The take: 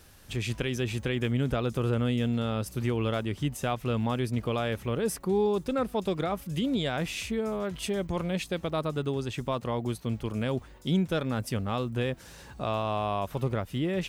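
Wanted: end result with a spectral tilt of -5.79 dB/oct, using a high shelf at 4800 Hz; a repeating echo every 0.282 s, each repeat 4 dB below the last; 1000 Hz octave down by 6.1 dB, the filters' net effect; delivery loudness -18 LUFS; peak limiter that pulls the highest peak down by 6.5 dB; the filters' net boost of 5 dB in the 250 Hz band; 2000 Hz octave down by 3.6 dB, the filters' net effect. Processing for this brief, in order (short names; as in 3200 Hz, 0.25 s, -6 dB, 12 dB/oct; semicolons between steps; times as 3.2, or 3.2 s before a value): bell 250 Hz +6.5 dB; bell 1000 Hz -8.5 dB; bell 2000 Hz -4.5 dB; high shelf 4800 Hz +9 dB; limiter -20.5 dBFS; feedback echo 0.282 s, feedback 63%, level -4 dB; gain +10 dB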